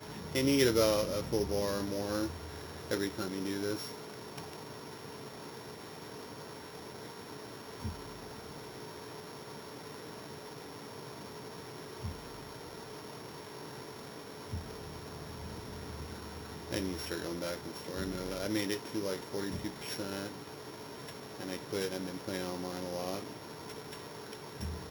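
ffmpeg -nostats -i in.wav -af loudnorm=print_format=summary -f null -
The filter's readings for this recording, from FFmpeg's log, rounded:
Input Integrated:    -38.6 LUFS
Input True Peak:     -12.7 dBTP
Input LRA:            10.1 LU
Input Threshold:     -48.6 LUFS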